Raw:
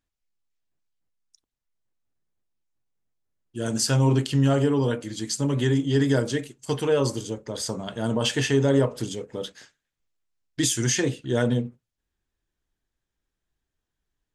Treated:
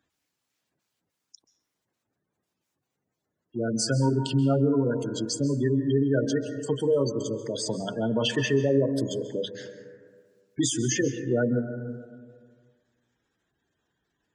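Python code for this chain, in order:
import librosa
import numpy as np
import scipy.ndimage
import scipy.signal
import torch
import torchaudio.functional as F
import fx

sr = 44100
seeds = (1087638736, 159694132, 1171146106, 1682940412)

y = scipy.signal.sosfilt(scipy.signal.butter(2, 110.0, 'highpass', fs=sr, output='sos'), x)
y = fx.spec_gate(y, sr, threshold_db=-15, keep='strong')
y = fx.low_shelf(y, sr, hz=160.0, db=-4.0)
y = fx.rev_plate(y, sr, seeds[0], rt60_s=1.4, hf_ratio=0.3, predelay_ms=120, drr_db=10.5)
y = fx.band_squash(y, sr, depth_pct=40)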